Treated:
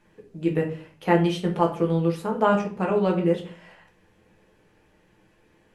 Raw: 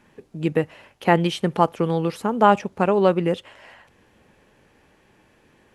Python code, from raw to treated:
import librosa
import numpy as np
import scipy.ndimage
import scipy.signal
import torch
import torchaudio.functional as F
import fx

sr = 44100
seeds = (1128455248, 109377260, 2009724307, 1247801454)

y = fx.room_shoebox(x, sr, seeds[0], volume_m3=36.0, walls='mixed', distance_m=0.6)
y = F.gain(torch.from_numpy(y), -7.5).numpy()